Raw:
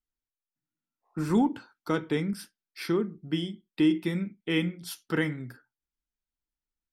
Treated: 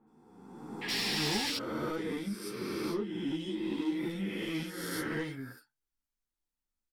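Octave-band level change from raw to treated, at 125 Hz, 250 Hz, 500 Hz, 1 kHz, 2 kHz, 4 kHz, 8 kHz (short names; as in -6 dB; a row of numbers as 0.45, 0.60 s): -8.0, -6.5, -5.0, -4.0, -1.5, +4.0, +5.0 dB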